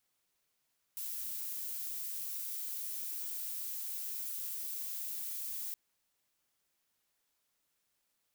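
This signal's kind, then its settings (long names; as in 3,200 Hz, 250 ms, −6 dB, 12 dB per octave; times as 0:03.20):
noise violet, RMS −40 dBFS 4.77 s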